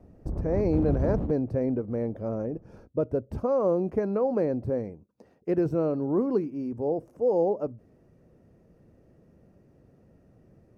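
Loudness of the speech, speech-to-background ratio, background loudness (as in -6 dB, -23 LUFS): -28.0 LUFS, 4.0 dB, -32.0 LUFS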